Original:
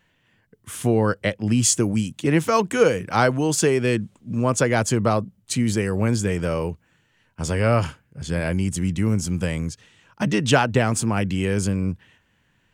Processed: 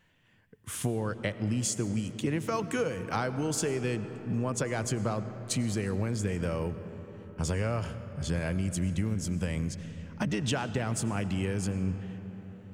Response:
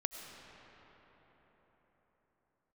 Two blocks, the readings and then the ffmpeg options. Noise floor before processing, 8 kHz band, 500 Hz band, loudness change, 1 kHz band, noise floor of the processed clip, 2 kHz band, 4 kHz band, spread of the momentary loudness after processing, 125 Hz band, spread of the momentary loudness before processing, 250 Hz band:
-65 dBFS, -10.0 dB, -11.5 dB, -10.0 dB, -12.0 dB, -53 dBFS, -11.5 dB, -9.5 dB, 8 LU, -8.0 dB, 10 LU, -9.0 dB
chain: -filter_complex "[0:a]acompressor=threshold=-25dB:ratio=6,asplit=2[a][b];[1:a]atrim=start_sample=2205,lowshelf=f=180:g=7.5[c];[b][c]afir=irnorm=-1:irlink=0,volume=-4dB[d];[a][d]amix=inputs=2:normalize=0,volume=-7dB"

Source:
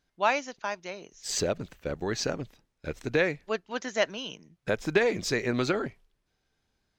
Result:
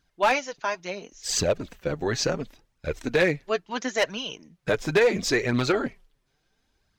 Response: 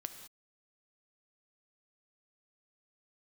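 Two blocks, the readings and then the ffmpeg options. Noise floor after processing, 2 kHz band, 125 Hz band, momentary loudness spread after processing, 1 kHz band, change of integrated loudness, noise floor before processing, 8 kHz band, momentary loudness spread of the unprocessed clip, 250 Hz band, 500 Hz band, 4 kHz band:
-73 dBFS, +3.5 dB, +4.5 dB, 13 LU, +3.5 dB, +4.0 dB, -78 dBFS, +4.5 dB, 13 LU, +3.5 dB, +4.0 dB, +4.5 dB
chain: -af "flanger=delay=0.6:depth=7.5:regen=17:speed=0.72:shape=triangular,asoftclip=type=hard:threshold=-22dB,volume=8dB"

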